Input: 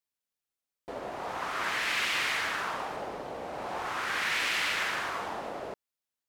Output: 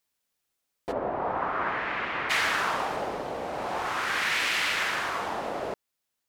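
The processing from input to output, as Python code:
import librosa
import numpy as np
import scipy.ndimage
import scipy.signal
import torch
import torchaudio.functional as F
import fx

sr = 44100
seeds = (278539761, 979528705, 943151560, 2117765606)

y = fx.lowpass(x, sr, hz=1300.0, slope=12, at=(0.91, 2.29), fade=0.02)
y = fx.rider(y, sr, range_db=10, speed_s=2.0)
y = y * librosa.db_to_amplitude(3.5)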